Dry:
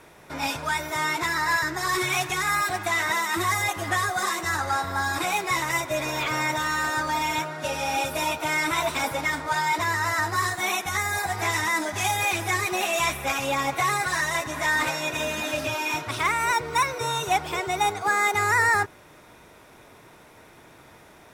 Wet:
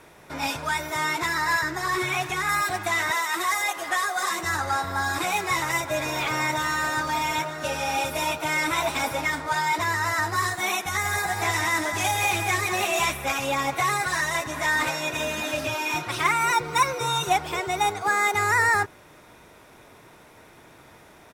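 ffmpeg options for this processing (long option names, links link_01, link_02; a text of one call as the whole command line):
ffmpeg -i in.wav -filter_complex "[0:a]asettb=1/sr,asplit=3[link_01][link_02][link_03];[link_01]atrim=end=1.614[link_04];[link_02]atrim=start=1.61:end=2.49,asetpts=PTS-STARTPTS,afade=type=in:duration=0.004:curve=qsin,afade=type=out:start_time=0.876:duration=0.004:curve=qsin,acrossover=split=3100[link_05][link_06];[link_06]acompressor=threshold=-35dB:ratio=4:attack=1:release=60[link_07];[link_05][link_07]amix=inputs=2:normalize=0[link_08];[link_03]atrim=start=2.486[link_09];[link_04][link_08]acrossfade=duration=0.004:curve1=hsin:curve2=qsin[link_10];[link_10][link_09]acrossfade=duration=0.004:curve1=qsin:curve2=hsin,asettb=1/sr,asplit=3[link_11][link_12][link_13];[link_11]atrim=end=3.114[link_14];[link_12]atrim=start=3.11:end=4.31,asetpts=PTS-STARTPTS,afade=type=in:duration=0.004:curve=qsin,afade=type=out:start_time=1.196:duration=0.004:curve=qsin,highpass=440[link_15];[link_13]atrim=start=4.306[link_16];[link_14][link_15]acrossfade=duration=0.004:curve1=hsin:curve2=qsin[link_17];[link_17][link_16]acrossfade=duration=0.004:curve1=qsin:curve2=hsin,asplit=3[link_18][link_19][link_20];[link_18]afade=type=out:start_time=5.01:duration=0.02[link_21];[link_19]aecho=1:1:915:0.224,afade=type=in:start_time=5.01:duration=0.02,afade=type=out:start_time=9.29:duration=0.02[link_22];[link_20]afade=type=in:start_time=9.29:duration=0.02[link_23];[link_21][link_22][link_23]amix=inputs=3:normalize=0,asettb=1/sr,asplit=3[link_24][link_25][link_26];[link_24]atrim=end=10.834[link_27];[link_25]atrim=start=10.83:end=13.11,asetpts=PTS-STARTPTS,afade=type=in:duration=0.004:curve=qsin,afade=type=out:start_time=2.276:duration=0.004:curve=qsin,aecho=1:1:187:0.473,atrim=end_sample=100548[link_28];[link_26]atrim=start=13.106[link_29];[link_27][link_28]acrossfade=duration=0.004:curve1=hsin:curve2=qsin[link_30];[link_30][link_29]acrossfade=duration=0.004:curve1=qsin:curve2=hsin,asettb=1/sr,asplit=3[link_31][link_32][link_33];[link_31]atrim=end=15.954[link_34];[link_32]atrim=start=15.95:end=17.33,asetpts=PTS-STARTPTS,afade=type=in:duration=0.004:curve=qsin,afade=type=out:start_time=1.376:duration=0.004:curve=qsin,aecho=1:1:5.7:0.65,atrim=end_sample=60858[link_35];[link_33]atrim=start=17.326[link_36];[link_34][link_35]acrossfade=duration=0.004:curve1=hsin:curve2=qsin[link_37];[link_37][link_36]acrossfade=duration=0.004:curve1=qsin:curve2=hsin" out.wav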